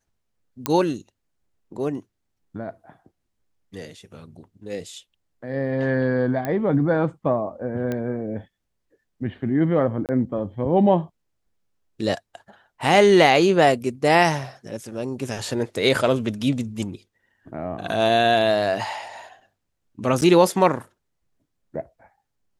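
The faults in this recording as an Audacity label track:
0.660000	0.660000	pop -6 dBFS
6.450000	6.450000	pop -14 dBFS
7.920000	7.920000	pop -15 dBFS
10.060000	10.090000	dropout 28 ms
20.210000	20.220000	dropout 9.3 ms

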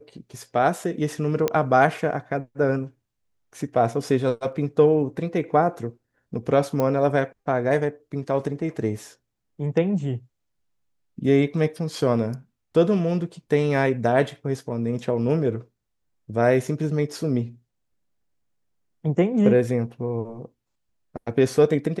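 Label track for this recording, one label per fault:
1.480000	1.480000	pop -9 dBFS
6.800000	6.800000	pop -12 dBFS

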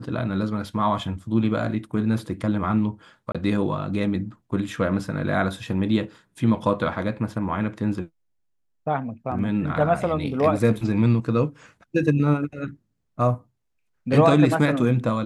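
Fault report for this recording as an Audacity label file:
3.320000	3.350000	dropout 26 ms

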